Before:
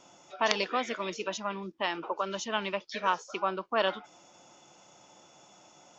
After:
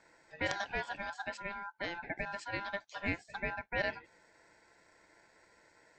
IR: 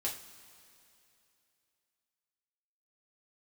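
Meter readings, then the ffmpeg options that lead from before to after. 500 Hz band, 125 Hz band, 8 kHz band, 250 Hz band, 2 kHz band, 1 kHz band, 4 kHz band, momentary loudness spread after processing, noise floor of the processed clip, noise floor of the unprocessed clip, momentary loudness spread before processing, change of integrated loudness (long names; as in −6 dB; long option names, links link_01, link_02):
−9.5 dB, +0.5 dB, can't be measured, −6.0 dB, −1.5 dB, −10.0 dB, −11.0 dB, 6 LU, −67 dBFS, −59 dBFS, 6 LU, −6.5 dB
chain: -af "tiltshelf=frequency=1100:gain=5,aeval=exprs='val(0)*sin(2*PI*1200*n/s)':channel_layout=same,volume=-5.5dB"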